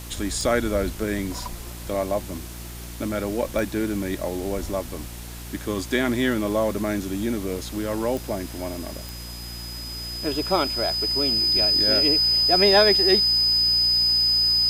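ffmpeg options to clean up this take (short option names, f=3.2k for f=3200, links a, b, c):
-af "adeclick=t=4,bandreject=f=58.9:t=h:w=4,bandreject=f=117.8:t=h:w=4,bandreject=f=176.7:t=h:w=4,bandreject=f=235.6:t=h:w=4,bandreject=f=294.5:t=h:w=4,bandreject=f=353.4:t=h:w=4,bandreject=f=5k:w=30,afwtdn=0.0089"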